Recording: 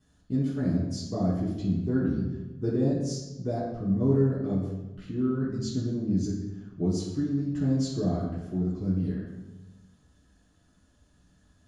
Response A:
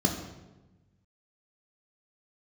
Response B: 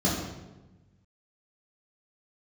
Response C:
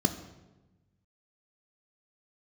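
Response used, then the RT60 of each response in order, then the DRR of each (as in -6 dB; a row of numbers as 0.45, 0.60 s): B; 1.1, 1.1, 1.1 s; 1.5, -7.0, 7.5 dB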